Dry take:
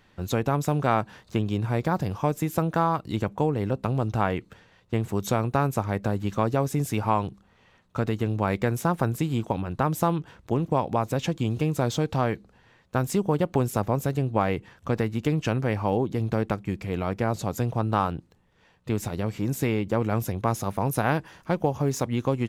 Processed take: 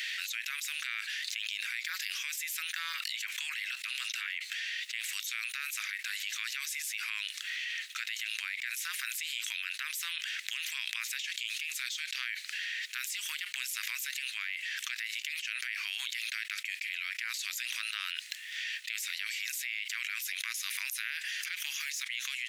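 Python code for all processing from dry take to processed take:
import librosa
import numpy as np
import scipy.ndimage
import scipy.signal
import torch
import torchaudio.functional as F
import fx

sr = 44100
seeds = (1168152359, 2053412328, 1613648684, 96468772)

y = fx.chain(x, sr, fx.dispersion(late='lows', ms=61.0, hz=470.0),
    fx.env_flatten(amount_pct=50), at=(2.93, 4.27))
y = scipy.signal.sosfilt(scipy.signal.butter(8, 1900.0, 'highpass', fs=sr, output='sos'), y)
y = fx.high_shelf(y, sr, hz=4500.0, db=-6.5)
y = fx.env_flatten(y, sr, amount_pct=100)
y = y * 10.0 ** (-3.0 / 20.0)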